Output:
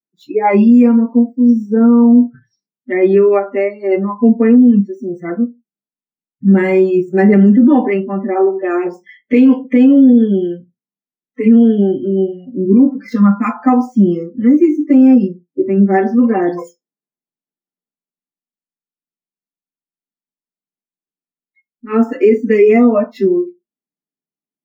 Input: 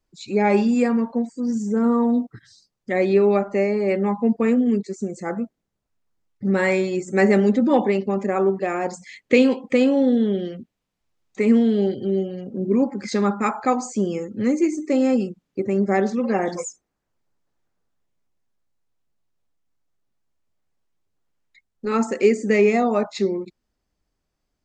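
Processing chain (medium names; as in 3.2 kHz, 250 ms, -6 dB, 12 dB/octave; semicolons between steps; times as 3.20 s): median filter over 5 samples; spectral noise reduction 26 dB; reverberation RT60 0.15 s, pre-delay 3 ms, DRR -2.5 dB; loudness maximiser -7 dB; trim -1 dB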